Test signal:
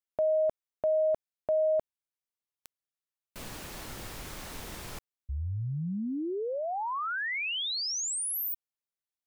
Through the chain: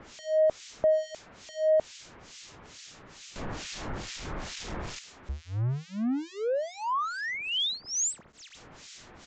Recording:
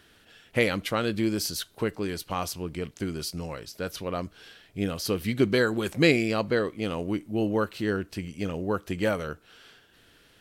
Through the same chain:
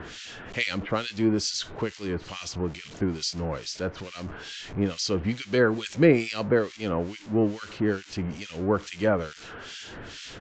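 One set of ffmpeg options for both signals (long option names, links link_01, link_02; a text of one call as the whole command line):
ffmpeg -i in.wav -filter_complex "[0:a]aeval=exprs='val(0)+0.5*0.0188*sgn(val(0))':channel_layout=same,acrossover=split=410|560|2500[link_01][link_02][link_03][link_04];[link_01]acompressor=mode=upward:threshold=-41dB:ratio=1.5:release=380:knee=2.83:detection=peak[link_05];[link_05][link_02][link_03][link_04]amix=inputs=4:normalize=0,acrossover=split=1900[link_06][link_07];[link_06]aeval=exprs='val(0)*(1-1/2+1/2*cos(2*PI*2.3*n/s))':channel_layout=same[link_08];[link_07]aeval=exprs='val(0)*(1-1/2-1/2*cos(2*PI*2.3*n/s))':channel_layout=same[link_09];[link_08][link_09]amix=inputs=2:normalize=0,aresample=16000,aresample=44100,volume=3.5dB" out.wav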